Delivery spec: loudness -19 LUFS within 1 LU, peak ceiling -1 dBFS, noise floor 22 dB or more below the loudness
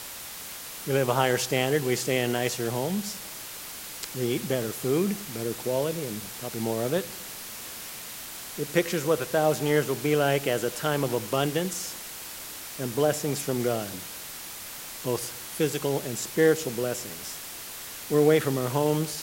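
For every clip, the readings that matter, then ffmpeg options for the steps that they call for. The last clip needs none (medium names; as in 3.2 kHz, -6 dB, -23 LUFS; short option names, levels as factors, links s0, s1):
noise floor -40 dBFS; noise floor target -50 dBFS; loudness -28.0 LUFS; peak level -9.5 dBFS; loudness target -19.0 LUFS
-> -af "afftdn=nr=10:nf=-40"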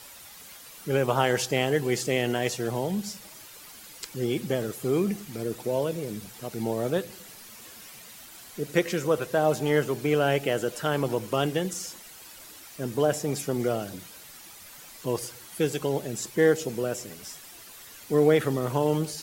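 noise floor -47 dBFS; noise floor target -50 dBFS
-> -af "afftdn=nr=6:nf=-47"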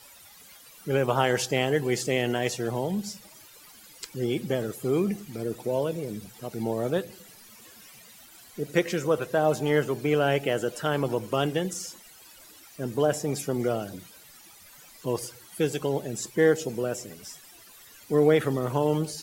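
noise floor -51 dBFS; loudness -27.5 LUFS; peak level -10.0 dBFS; loudness target -19.0 LUFS
-> -af "volume=2.66"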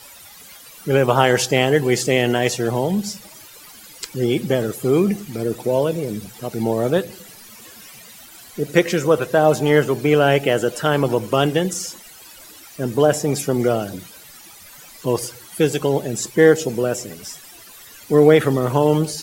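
loudness -19.0 LUFS; peak level -1.5 dBFS; noise floor -43 dBFS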